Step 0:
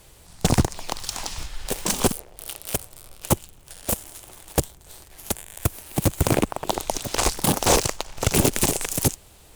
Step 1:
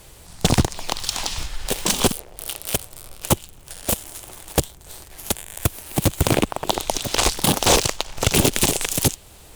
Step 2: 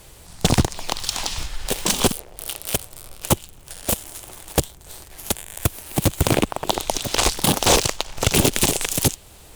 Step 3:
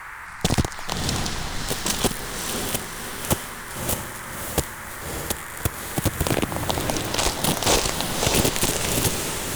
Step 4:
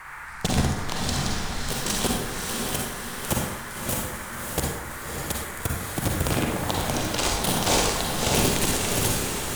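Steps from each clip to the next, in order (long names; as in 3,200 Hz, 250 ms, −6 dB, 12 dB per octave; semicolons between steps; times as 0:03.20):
dynamic equaliser 3,400 Hz, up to +6 dB, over −41 dBFS, Q 1.4; in parallel at −2 dB: downward compressor, threshold −28 dBFS, peak gain reduction 15 dB
no processing that can be heard
feedback delay with all-pass diffusion 589 ms, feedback 46%, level −4 dB; noise in a band 860–2,100 Hz −34 dBFS; level −4 dB
convolution reverb RT60 0.85 s, pre-delay 38 ms, DRR −0.5 dB; level −4.5 dB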